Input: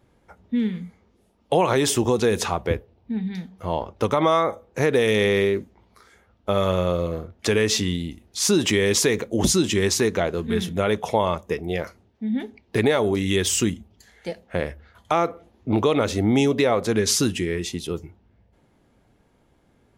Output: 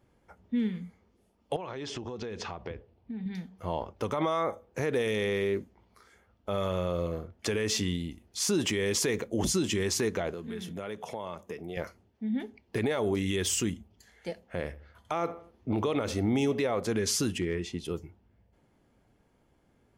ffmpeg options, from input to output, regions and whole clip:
-filter_complex "[0:a]asettb=1/sr,asplit=3[a][b][c];[a]atrim=end=1.564[d];[b]atrim=start=1.56:end=3.26,asetpts=PTS-STARTPTS,afade=t=in:d=0.004:c=qsin,afade=t=out:st=1.696:d=0.004:c=qsin,lowpass=f=5.3k:w=0.5412,lowpass=f=5.3k:w=1.3066,acompressor=threshold=-27dB:ratio=16:attack=3.2:release=140:knee=1:detection=peak[e];[c]atrim=start=3.256[f];[d][e]acrossfade=d=0.004:c1=hsin:c2=qsin[g];[g][f]acrossfade=d=0.004:c1=qsin:c2=hsin,asettb=1/sr,asplit=3[h][i][j];[h]atrim=end=10.334[k];[i]atrim=start=10.33:end=11.77,asetpts=PTS-STARTPTS,afade=t=in:d=0.004:c=qsin,afade=t=out:st=1.436:d=0.004:c=qsin,highpass=120,acompressor=threshold=-30dB:ratio=3:attack=3.2:release=140:knee=1:detection=peak[l];[j]atrim=start=11.766[m];[k][l]acrossfade=d=0.004:c1=hsin:c2=qsin[n];[n][m]acrossfade=d=0.004:c1=qsin:c2=hsin,asettb=1/sr,asplit=3[o][p][q];[o]atrim=end=14.644[r];[p]atrim=start=14.64:end=16.66,asetpts=PTS-STARTPTS,afade=t=in:d=0.004:c=qsin,afade=t=out:st=2.016:d=0.004:c=qsin,bandreject=f=7k:w=17,asplit=2[s][t];[t]adelay=83,lowpass=f=2.5k:p=1,volume=-17.5dB,asplit=2[u][v];[v]adelay=83,lowpass=f=2.5k:p=1,volume=0.42,asplit=2[w][x];[x]adelay=83,lowpass=f=2.5k:p=1,volume=0.42[y];[s][u][w][y]amix=inputs=4:normalize=0,atrim=end_sample=89082,deesser=0.5[z];[q]atrim=start=16.656[aa];[r][z]acrossfade=d=0.004:c1=hsin:c2=qsin[ab];[ab][aa]acrossfade=d=0.004:c1=qsin:c2=hsin,asettb=1/sr,asplit=3[ac][ad][ae];[ac]atrim=end=17.384[af];[ad]atrim=start=17.38:end=17.85,asetpts=PTS-STARTPTS,afade=t=in:d=0.004:c=qsin,afade=t=out:st=0.466:d=0.004:c=qsin,aemphasis=mode=reproduction:type=50fm,asoftclip=type=hard:threshold=-14.5dB[ag];[ae]atrim=start=17.846[ah];[af][ag]acrossfade=d=0.004:c1=hsin:c2=qsin[ai];[ai][ah]acrossfade=d=0.004:c1=qsin:c2=hsin,bandreject=f=3.8k:w=15,alimiter=limit=-13dB:level=0:latency=1:release=33,volume=-6dB"

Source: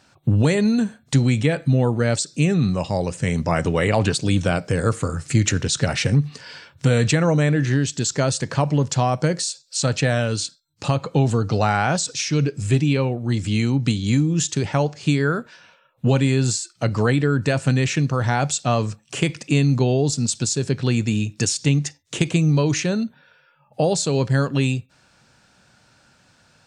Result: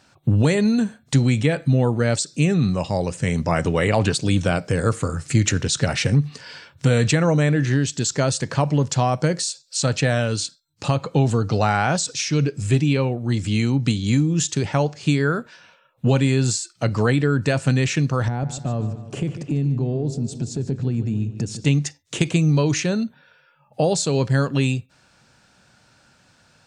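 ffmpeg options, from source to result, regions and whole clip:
-filter_complex "[0:a]asettb=1/sr,asplit=3[a][b][c];[a]atrim=end=18.284[d];[b]atrim=start=18.28:end=21.65,asetpts=PTS-STARTPTS,afade=t=in:d=0.004:c=qsin,afade=t=out:st=3.366:d=0.004:c=qsin,tiltshelf=f=780:g=9.5,acompressor=threshold=-25dB:ratio=2.5:attack=3.2:release=140:knee=1:detection=peak,asplit=2[e][f];[f]adelay=148,lowpass=f=4.4k:p=1,volume=-11.5dB,asplit=2[g][h];[h]adelay=148,lowpass=f=4.4k:p=1,volume=0.53,asplit=2[i][j];[j]adelay=148,lowpass=f=4.4k:p=1,volume=0.53,asplit=2[k][l];[l]adelay=148,lowpass=f=4.4k:p=1,volume=0.53,asplit=2[m][n];[n]adelay=148,lowpass=f=4.4k:p=1,volume=0.53,asplit=2[o][p];[p]adelay=148,lowpass=f=4.4k:p=1,volume=0.53[q];[e][g][i][k][m][o][q]amix=inputs=7:normalize=0,atrim=end_sample=148617[r];[c]atrim=start=21.646[s];[d][r]acrossfade=d=0.004:c1=hsin:c2=qsin[t];[t][s]acrossfade=d=0.004:c1=qsin:c2=hsin"

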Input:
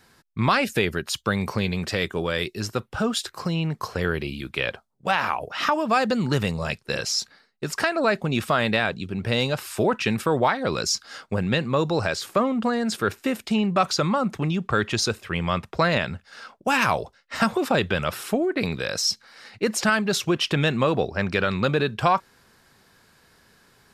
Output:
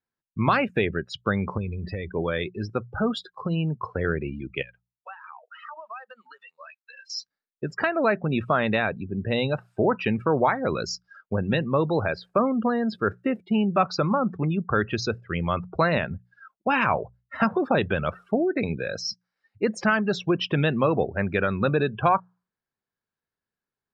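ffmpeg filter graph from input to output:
-filter_complex "[0:a]asettb=1/sr,asplit=3[a][b][c];[a]atrim=end=1.574[d];[b]atrim=start=1.57:end=2.13,asetpts=PTS-STARTPTS,afade=t=in:d=0.004:c=qsin,afade=t=out:st=0.556:d=0.004:c=qsin,equalizer=f=62:w=1:g=12,acompressor=threshold=-27dB:ratio=2.5:attack=3.2:release=140:knee=1:detection=peak[e];[c]atrim=start=2.126[f];[d][e]acrossfade=d=0.004:c1=hsin:c2=qsin[g];[g][f]acrossfade=d=0.004:c1=qsin:c2=hsin,asettb=1/sr,asplit=3[h][i][j];[h]atrim=end=4.624[k];[i]atrim=start=4.62:end=7.1,asetpts=PTS-STARTPTS,afade=t=in:d=0.004:c=qsin,afade=t=out:st=2.476:d=0.004:c=qsin,highpass=1.1k,acompressor=threshold=-34dB:ratio=4:attack=3.2:release=140:knee=1:detection=peak[l];[j]atrim=start=7.096[m];[k][l]acrossfade=d=0.004:c1=hsin:c2=qsin[n];[n][m]acrossfade=d=0.004:c1=qsin:c2=hsin,lowpass=f=2.7k:p=1,afftdn=nr=33:nf=-32,bandreject=f=60:t=h:w=6,bandreject=f=120:t=h:w=6,bandreject=f=180:t=h:w=6"

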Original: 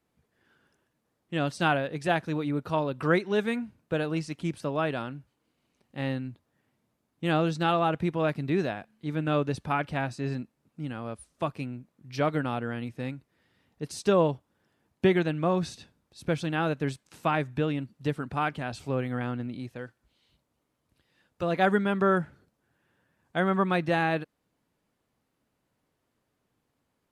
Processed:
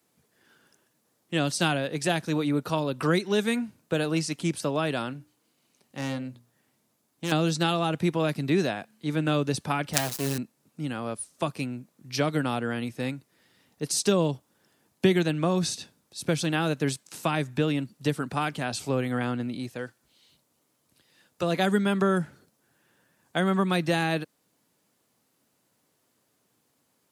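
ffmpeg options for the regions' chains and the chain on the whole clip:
-filter_complex "[0:a]asettb=1/sr,asplit=3[a][b][c];[a]atrim=end=5.134[d];[b]atrim=start=5.13:end=7.32,asetpts=PTS-STARTPTS,afade=t=in:d=0.004:c=qsin,afade=t=out:st=2.186:d=0.004:c=qsin,bandreject=f=60:t=h:w=6,bandreject=f=120:t=h:w=6,bandreject=f=180:t=h:w=6,bandreject=f=240:t=h:w=6,bandreject=f=300:t=h:w=6,bandreject=f=360:t=h:w=6,bandreject=f=420:t=h:w=6,bandreject=f=480:t=h:w=6,bandreject=f=540:t=h:w=6,bandreject=f=600:t=h:w=6,aeval=exprs='(tanh(28.2*val(0)+0.35)-tanh(0.35))/28.2':c=same[e];[c]atrim=start=7.316[f];[d][e]acrossfade=d=0.004:c1=hsin:c2=qsin[g];[g][f]acrossfade=d=0.004:c1=qsin:c2=hsin,asettb=1/sr,asplit=3[h][i][j];[h]atrim=end=9.934[k];[i]atrim=start=9.93:end=10.38,asetpts=PTS-STARTPTS,afade=t=in:d=0.004:c=qsin,afade=t=out:st=0.446:d=0.004:c=qsin,aecho=1:1:6.4:0.83,atrim=end_sample=19845,acrusher=bits=4:dc=4:mix=0:aa=0.000001[l];[j]atrim=start=10.376[m];[k][l]acrossfade=d=0.004:c1=hsin:c2=qsin[n];[n][m]acrossfade=d=0.004:c1=qsin:c2=hsin,highpass=120,bass=f=250:g=-1,treble=f=4k:g=10,acrossover=split=310|3000[o][p][q];[p]acompressor=threshold=-30dB:ratio=6[r];[o][r][q]amix=inputs=3:normalize=0,volume=4.5dB"

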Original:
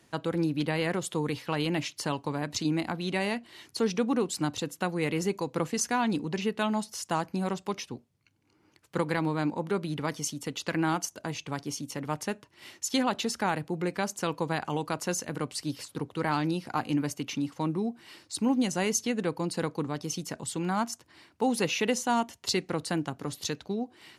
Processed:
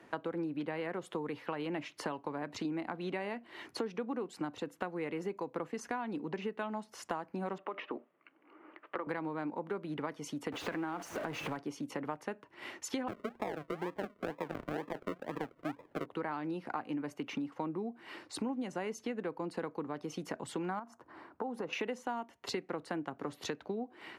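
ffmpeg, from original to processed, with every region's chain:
-filter_complex "[0:a]asettb=1/sr,asplit=3[a][b][c];[a]atrim=end=7.584[d];[b]atrim=start=7.58:end=9.07,asetpts=PTS-STARTPTS,afade=t=in:d=0.004:c=qsin,afade=t=out:st=1.486:d=0.004:c=qsin,highpass=f=200:w=0.5412,highpass=f=200:w=1.3066,equalizer=f=210:t=q:w=4:g=-5,equalizer=f=330:t=q:w=4:g=4,equalizer=f=610:t=q:w=4:g=8,equalizer=f=1.2k:t=q:w=4:g=10,equalizer=f=1.9k:t=q:w=4:g=5,equalizer=f=2.9k:t=q:w=4:g=4,lowpass=f=3.3k:w=0.5412,lowpass=f=3.3k:w=1.3066,acompressor=threshold=-35dB:ratio=3:attack=3.2:release=140:knee=1:detection=peak[e];[c]atrim=start=9.066[f];[d][e]acrossfade=d=0.004:c1=hsin:c2=qsin[g];[g][f]acrossfade=d=0.004:c1=qsin:c2=hsin,asettb=1/sr,asplit=3[h][i][j];[h]atrim=end=10.524[k];[i]atrim=start=10.52:end=11.57,asetpts=PTS-STARTPTS,afade=t=in:d=0.004:c=qsin,afade=t=out:st=1.046:d=0.004:c=qsin,aeval=exprs='val(0)+0.5*0.0251*sgn(val(0))':c=same,acompressor=threshold=-30dB:ratio=2:attack=3.2:release=140:knee=1:detection=peak[l];[j]atrim=start=11.566[m];[k][l]acrossfade=d=0.004:c1=hsin:c2=qsin[n];[n][m]acrossfade=d=0.004:c1=qsin:c2=hsin,asettb=1/sr,asplit=3[o][p][q];[o]atrim=end=13.084[r];[p]atrim=start=13.08:end=16.06,asetpts=PTS-STARTPTS,afade=t=in:d=0.004:c=qsin,afade=t=out:st=2.976:d=0.004:c=qsin,lowpass=f=1.3k:w=0.5412,lowpass=f=1.3k:w=1.3066,acrusher=samples=42:mix=1:aa=0.000001:lfo=1:lforange=25.2:lforate=2.1[s];[q]atrim=start=16.056[t];[r][s]acrossfade=d=0.004:c1=hsin:c2=qsin[u];[u][t]acrossfade=d=0.004:c1=qsin:c2=hsin,asettb=1/sr,asplit=3[v][w][x];[v]atrim=end=20.794[y];[w]atrim=start=20.79:end=21.73,asetpts=PTS-STARTPTS,afade=t=in:d=0.004:c=qsin,afade=t=out:st=0.936:d=0.004:c=qsin,highshelf=f=1.7k:t=q:w=1.5:g=-8,acompressor=threshold=-37dB:ratio=2.5:attack=3.2:release=140:knee=1:detection=peak[z];[x]atrim=start=21.726[aa];[y][z]acrossfade=d=0.004:c1=hsin:c2=qsin[ab];[ab][aa]acrossfade=d=0.004:c1=qsin:c2=hsin,acrossover=split=230 2400:gain=0.224 1 0.126[ac][ad][ae];[ac][ad][ae]amix=inputs=3:normalize=0,acompressor=threshold=-43dB:ratio=6,volume=7.5dB"

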